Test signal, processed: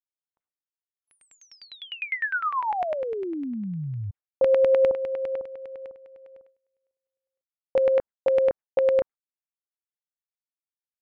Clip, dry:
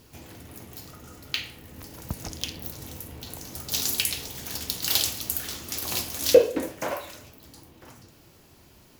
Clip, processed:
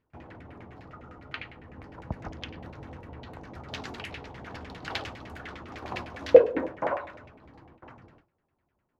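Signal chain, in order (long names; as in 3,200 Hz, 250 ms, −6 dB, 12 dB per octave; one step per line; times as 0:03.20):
noise gate with hold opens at −41 dBFS
auto-filter low-pass saw down 9.9 Hz 660–2,300 Hz
level −2 dB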